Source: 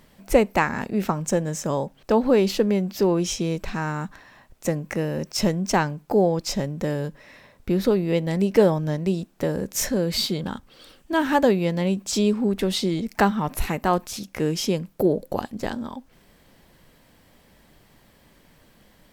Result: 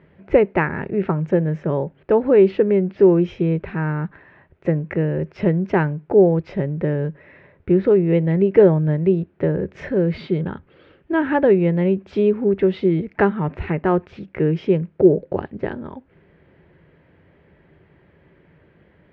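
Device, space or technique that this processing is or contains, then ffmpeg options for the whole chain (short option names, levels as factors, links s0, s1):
bass cabinet: -af "highpass=63,equalizer=f=84:t=q:w=4:g=7,equalizer=f=160:t=q:w=4:g=6,equalizer=f=230:t=q:w=4:g=-7,equalizer=f=380:t=q:w=4:g=8,equalizer=f=760:t=q:w=4:g=-5,equalizer=f=1100:t=q:w=4:g=-6,lowpass=f=2300:w=0.5412,lowpass=f=2300:w=1.3066,volume=1.33"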